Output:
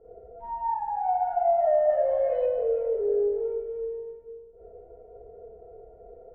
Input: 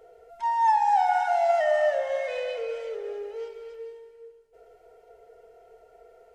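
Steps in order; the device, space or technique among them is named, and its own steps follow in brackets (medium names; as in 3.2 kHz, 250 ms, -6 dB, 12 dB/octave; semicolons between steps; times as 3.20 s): television next door (compression 3:1, threshold -24 dBFS, peak gain reduction 5.5 dB; low-pass 350 Hz 12 dB/octave; reverberation RT60 0.40 s, pre-delay 38 ms, DRR -8.5 dB); 1.89–2.46 s: treble shelf 2.3 kHz +9.5 dB; trim +4 dB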